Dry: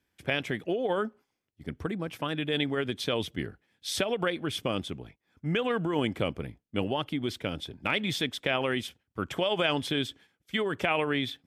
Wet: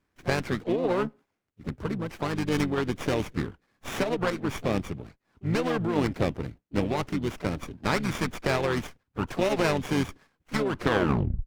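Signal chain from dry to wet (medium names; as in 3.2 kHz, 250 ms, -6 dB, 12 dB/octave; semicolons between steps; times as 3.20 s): tape stop on the ending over 0.78 s; harmony voices -7 st -6 dB, +4 st -18 dB, +5 st -15 dB; sliding maximum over 9 samples; trim +1.5 dB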